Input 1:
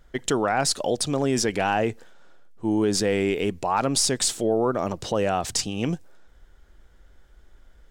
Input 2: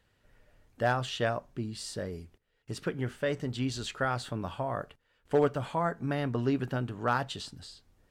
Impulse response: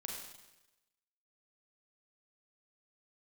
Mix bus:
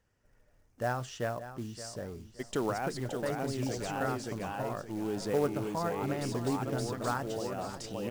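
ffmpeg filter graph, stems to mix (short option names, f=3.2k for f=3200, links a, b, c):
-filter_complex "[0:a]adelay=2250,volume=-3dB,asplit=2[a][b];[b]volume=-12.5dB[c];[1:a]highshelf=f=4.7k:t=q:w=3:g=6,volume=-4dB,asplit=3[d][e][f];[e]volume=-13dB[g];[f]apad=whole_len=447637[h];[a][h]sidechaincompress=threshold=-46dB:ratio=4:attack=28:release=1310[i];[c][g]amix=inputs=2:normalize=0,aecho=0:1:573|1146|1719|2292:1|0.29|0.0841|0.0244[j];[i][d][j]amix=inputs=3:normalize=0,highshelf=f=3.6k:g=-10,acrusher=bits=5:mode=log:mix=0:aa=0.000001"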